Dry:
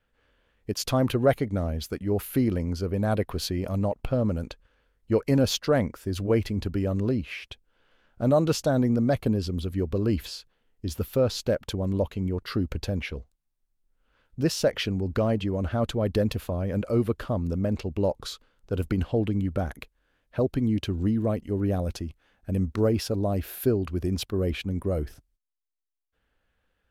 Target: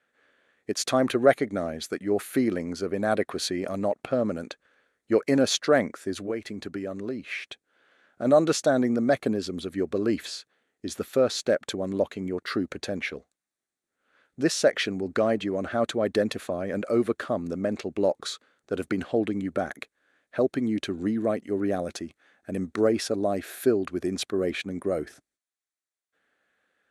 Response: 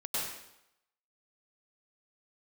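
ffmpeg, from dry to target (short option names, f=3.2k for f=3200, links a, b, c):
-filter_complex "[0:a]asplit=3[a][b][c];[a]afade=t=out:st=6.13:d=0.02[d];[b]acompressor=threshold=-28dB:ratio=6,afade=t=in:st=6.13:d=0.02,afade=t=out:st=8.24:d=0.02[e];[c]afade=t=in:st=8.24:d=0.02[f];[d][e][f]amix=inputs=3:normalize=0,highpass=320,equalizer=f=490:t=q:w=4:g=-4,equalizer=f=940:t=q:w=4:g=-8,equalizer=f=1.8k:t=q:w=4:g=3,equalizer=f=2.9k:t=q:w=4:g=-7,equalizer=f=5k:t=q:w=4:g=-6,lowpass=f=9.9k:w=0.5412,lowpass=f=9.9k:w=1.3066,volume=5.5dB"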